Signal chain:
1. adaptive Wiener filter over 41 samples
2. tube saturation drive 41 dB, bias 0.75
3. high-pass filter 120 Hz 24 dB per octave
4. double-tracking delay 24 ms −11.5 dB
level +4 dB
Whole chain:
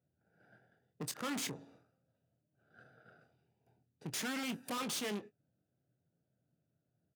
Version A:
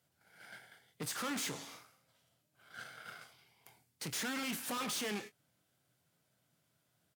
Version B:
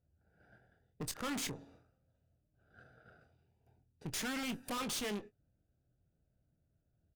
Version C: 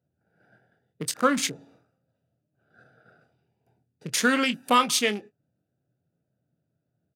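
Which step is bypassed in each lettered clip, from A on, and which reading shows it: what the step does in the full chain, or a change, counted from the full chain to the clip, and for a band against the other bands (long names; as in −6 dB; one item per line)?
1, 250 Hz band −2.5 dB
3, change in crest factor −4.0 dB
2, change in crest factor +5.0 dB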